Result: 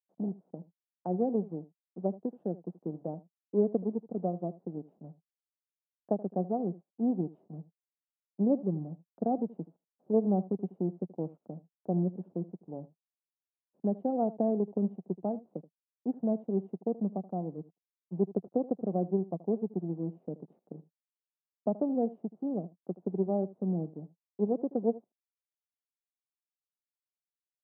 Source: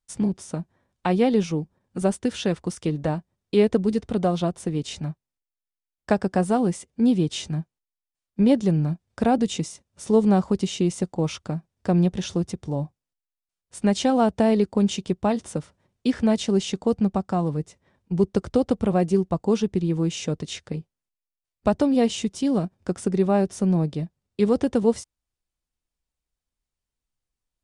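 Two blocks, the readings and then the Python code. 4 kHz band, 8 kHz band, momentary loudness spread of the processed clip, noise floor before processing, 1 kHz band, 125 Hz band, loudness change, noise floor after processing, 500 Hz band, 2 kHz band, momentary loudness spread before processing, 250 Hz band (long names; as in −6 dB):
below −40 dB, below −40 dB, 17 LU, below −85 dBFS, −11.0 dB, −11.5 dB, −9.5 dB, below −85 dBFS, −9.0 dB, below −35 dB, 12 LU, −10.0 dB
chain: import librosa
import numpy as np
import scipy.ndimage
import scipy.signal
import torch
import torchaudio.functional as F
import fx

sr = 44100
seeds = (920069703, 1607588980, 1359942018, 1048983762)

p1 = fx.delta_hold(x, sr, step_db=-37.0)
p2 = fx.power_curve(p1, sr, exponent=1.4)
p3 = scipy.signal.sosfilt(scipy.signal.cheby1(3, 1.0, [170.0, 740.0], 'bandpass', fs=sr, output='sos'), p2)
p4 = p3 + fx.echo_single(p3, sr, ms=78, db=-18.5, dry=0)
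y = p4 * librosa.db_to_amplitude(-6.0)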